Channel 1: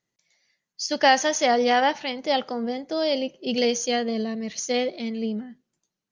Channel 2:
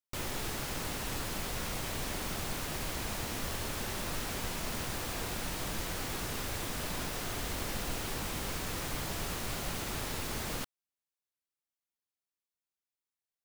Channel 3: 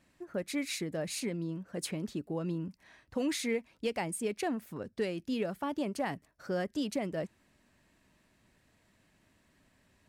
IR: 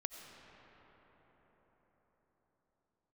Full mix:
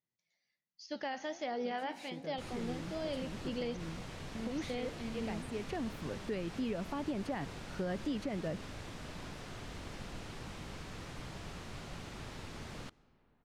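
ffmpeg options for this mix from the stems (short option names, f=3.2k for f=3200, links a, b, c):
-filter_complex "[0:a]lowpass=5.4k,flanger=delay=5.9:depth=6.4:regen=81:speed=1.3:shape=triangular,volume=-11dB,asplit=3[a][b][c];[a]atrim=end=3.77,asetpts=PTS-STARTPTS,afade=t=out:st=3.766:d=0.004:c=hsin[d];[b]atrim=start=3.77:end=4.35,asetpts=PTS-STARTPTS,volume=0[e];[c]atrim=start=4.35,asetpts=PTS-STARTPTS,afade=t=in:d=0.004:c=hsin[f];[d][e][f]concat=n=3:v=0:a=1,asplit=3[g][h][i];[h]volume=-16.5dB[j];[1:a]lowpass=7k,adelay=2250,volume=-10.5dB,asplit=2[k][l];[l]volume=-15dB[m];[2:a]adelay=1300,volume=-2.5dB,asplit=2[n][o];[o]volume=-17dB[p];[i]apad=whole_len=502047[q];[n][q]sidechaincompress=threshold=-48dB:ratio=8:attack=16:release=1140[r];[3:a]atrim=start_sample=2205[s];[j][m][p]amix=inputs=3:normalize=0[t];[t][s]afir=irnorm=-1:irlink=0[u];[g][k][r][u]amix=inputs=4:normalize=0,acrossover=split=4200[v][w];[w]acompressor=threshold=-57dB:ratio=4:attack=1:release=60[x];[v][x]amix=inputs=2:normalize=0,equalizer=f=140:w=0.74:g=4.5,alimiter=level_in=4dB:limit=-24dB:level=0:latency=1:release=155,volume=-4dB"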